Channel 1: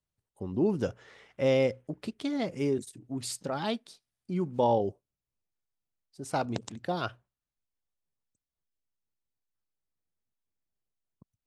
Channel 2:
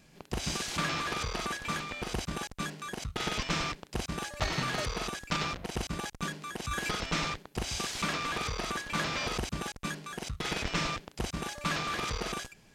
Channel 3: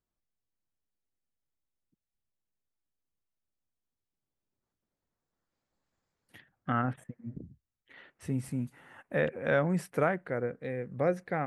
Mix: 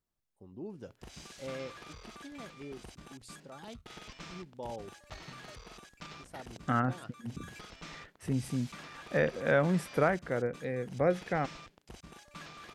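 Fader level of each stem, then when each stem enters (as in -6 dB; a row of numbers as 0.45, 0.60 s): -16.5, -16.0, +0.5 dB; 0.00, 0.70, 0.00 s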